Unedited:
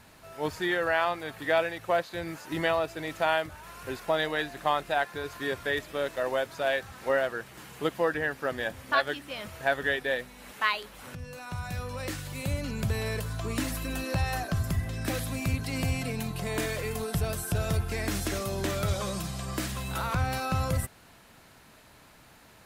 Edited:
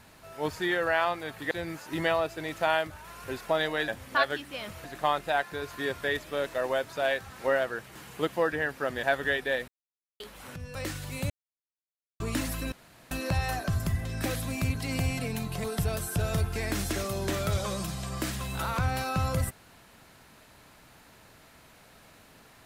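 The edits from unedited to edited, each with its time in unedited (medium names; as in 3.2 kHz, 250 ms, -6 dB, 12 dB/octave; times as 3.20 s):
1.51–2.10 s: delete
8.65–9.62 s: move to 4.47 s
10.27–10.79 s: mute
11.34–11.98 s: delete
12.53–13.43 s: mute
13.95 s: insert room tone 0.39 s
16.48–17.00 s: delete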